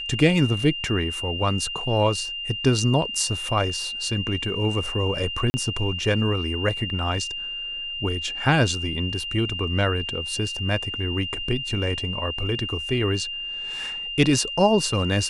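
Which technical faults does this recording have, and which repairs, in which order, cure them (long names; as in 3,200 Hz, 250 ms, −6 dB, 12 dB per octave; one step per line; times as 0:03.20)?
whistle 2,800 Hz −29 dBFS
0:05.50–0:05.54: drop-out 40 ms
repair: notch filter 2,800 Hz, Q 30
repair the gap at 0:05.50, 40 ms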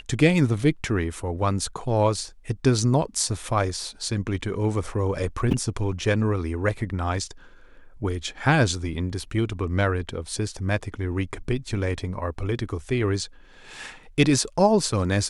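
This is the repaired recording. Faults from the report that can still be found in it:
none of them is left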